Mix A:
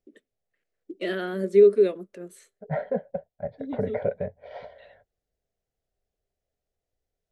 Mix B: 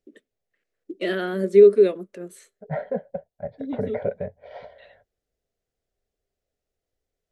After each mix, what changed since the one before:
first voice +3.5 dB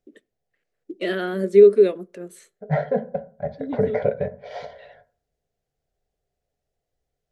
second voice: remove distance through air 260 m; reverb: on, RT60 0.45 s

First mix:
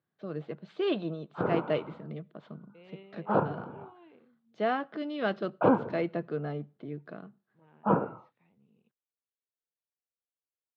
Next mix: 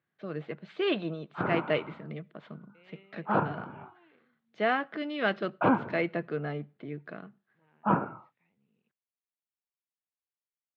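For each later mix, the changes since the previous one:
second voice -8.0 dB; background: add peaking EQ 480 Hz -9.5 dB 0.4 oct; master: add peaking EQ 2.1 kHz +9 dB 1.1 oct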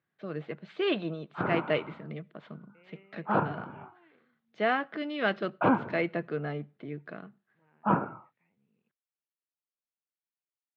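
second voice: add steep low-pass 2.7 kHz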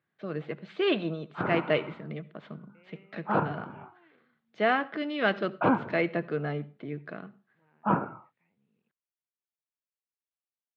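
first voice: send +11.5 dB

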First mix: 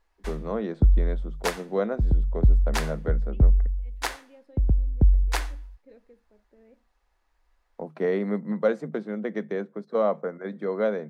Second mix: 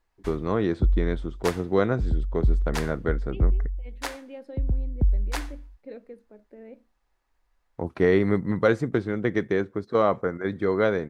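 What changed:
first voice: remove rippled Chebyshev high-pass 150 Hz, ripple 9 dB; second voice +11.5 dB; background -3.5 dB

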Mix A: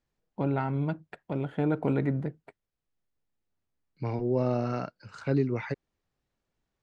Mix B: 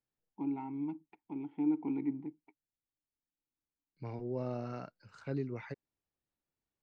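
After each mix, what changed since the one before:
first voice: add vowel filter u; second voice -10.5 dB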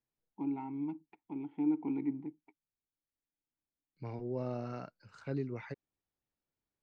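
no change

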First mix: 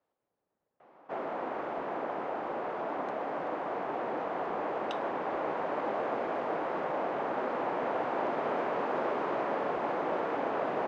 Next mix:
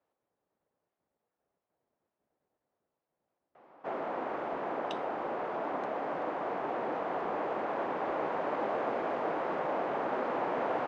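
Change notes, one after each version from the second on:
background: entry +2.75 s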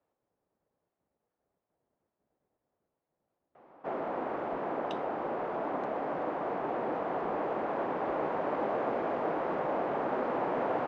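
master: add tilt EQ -1.5 dB/octave

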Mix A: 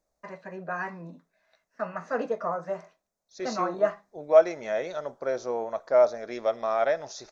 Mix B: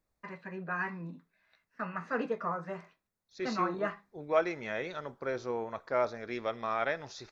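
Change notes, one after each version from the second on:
master: add fifteen-band graphic EQ 100 Hz +8 dB, 630 Hz -12 dB, 2.5 kHz +3 dB, 6.3 kHz -10 dB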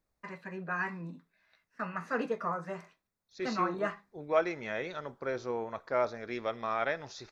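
first voice: remove distance through air 97 m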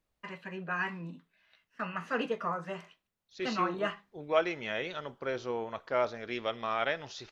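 master: add peaking EQ 3 kHz +14.5 dB 0.33 oct

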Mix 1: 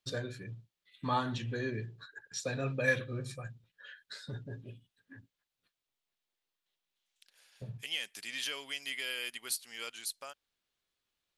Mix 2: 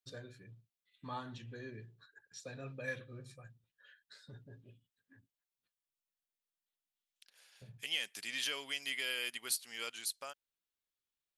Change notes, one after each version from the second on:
first voice -11.5 dB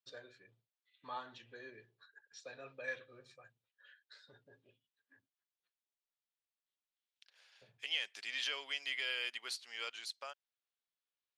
master: add three-band isolator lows -19 dB, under 390 Hz, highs -23 dB, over 6.1 kHz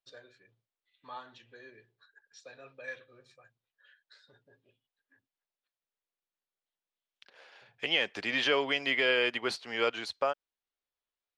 second voice: remove differentiator

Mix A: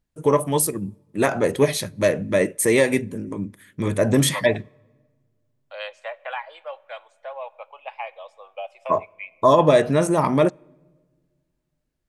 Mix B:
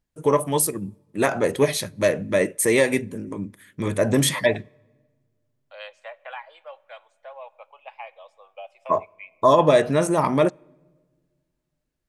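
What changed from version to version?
second voice -5.5 dB; master: add bass shelf 350 Hz -3 dB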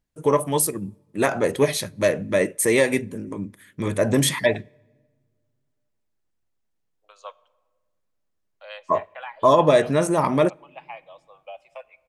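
second voice: entry +2.90 s

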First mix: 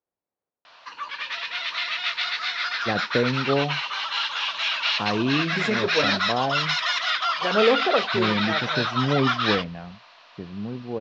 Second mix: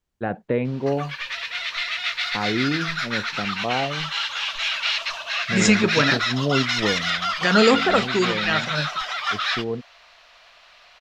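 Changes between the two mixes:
first voice: entry -2.65 s; second voice: remove band-pass filter 580 Hz, Q 1.2; background: remove cabinet simulation 140–5600 Hz, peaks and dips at 290 Hz +7 dB, 1 kHz +6 dB, 2.1 kHz -3 dB

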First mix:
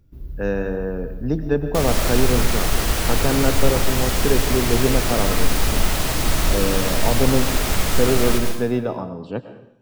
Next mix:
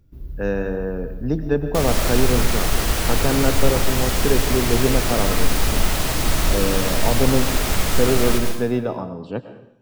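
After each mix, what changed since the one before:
no change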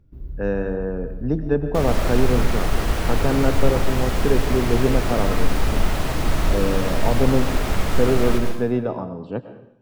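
master: add treble shelf 3.2 kHz -12 dB

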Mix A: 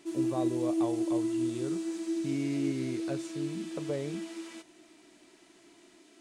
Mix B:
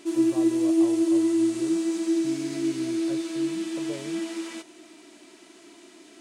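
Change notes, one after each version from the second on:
speech -4.5 dB; background +8.5 dB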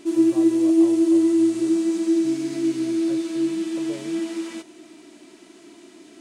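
background: add bass shelf 280 Hz +10.5 dB

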